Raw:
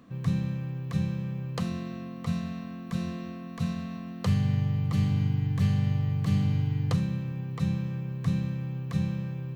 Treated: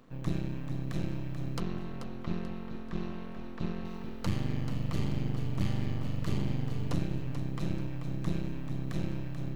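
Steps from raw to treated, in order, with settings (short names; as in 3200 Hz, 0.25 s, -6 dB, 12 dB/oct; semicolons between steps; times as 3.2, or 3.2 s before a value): notches 50/100/150/200 Hz; half-wave rectifier; 1.6–3.85 air absorption 170 m; lo-fi delay 0.436 s, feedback 35%, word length 11-bit, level -8.5 dB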